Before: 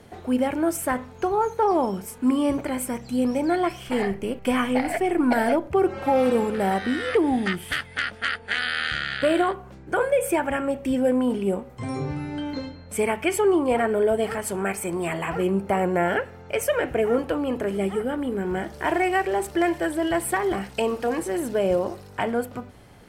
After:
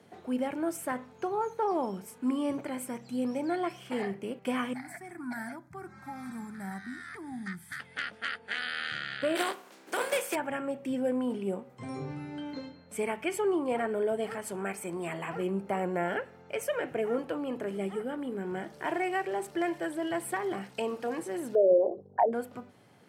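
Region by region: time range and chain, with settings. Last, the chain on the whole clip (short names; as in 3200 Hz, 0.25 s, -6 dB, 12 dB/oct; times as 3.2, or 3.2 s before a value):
4.73–7.8 band shelf 580 Hz -8 dB 2.5 oct + fixed phaser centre 1200 Hz, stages 4
9.35–10.34 spectral contrast lowered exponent 0.53 + HPF 240 Hz 24 dB/oct
21.55–22.33 formant sharpening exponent 3 + bell 730 Hz +11 dB 1.9 oct
whole clip: HPF 120 Hz 24 dB/oct; high shelf 11000 Hz -4.5 dB; gain -8.5 dB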